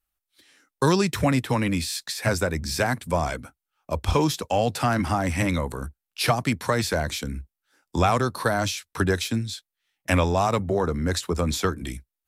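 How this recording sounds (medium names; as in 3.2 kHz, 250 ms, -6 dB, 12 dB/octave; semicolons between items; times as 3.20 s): noise floor -87 dBFS; spectral tilt -5.0 dB/octave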